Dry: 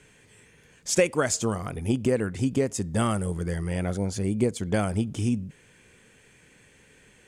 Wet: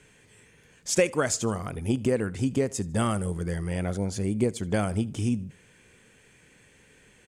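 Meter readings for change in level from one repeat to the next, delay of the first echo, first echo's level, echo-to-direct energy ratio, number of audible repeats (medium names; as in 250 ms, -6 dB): -8.5 dB, 76 ms, -23.0 dB, -22.5 dB, 2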